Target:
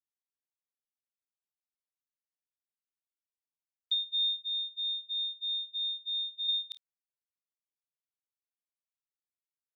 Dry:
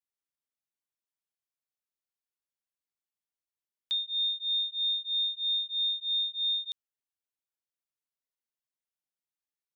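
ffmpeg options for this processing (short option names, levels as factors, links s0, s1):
-filter_complex "[0:a]agate=range=0.0708:threshold=0.02:ratio=16:detection=peak,asplit=3[s0][s1][s2];[s0]afade=t=out:st=4.38:d=0.02[s3];[s1]lowpass=3200,afade=t=in:st=4.38:d=0.02,afade=t=out:st=6.47:d=0.02[s4];[s2]afade=t=in:st=6.47:d=0.02[s5];[s3][s4][s5]amix=inputs=3:normalize=0,aecho=1:1:27|51:0.224|0.2,volume=1.19"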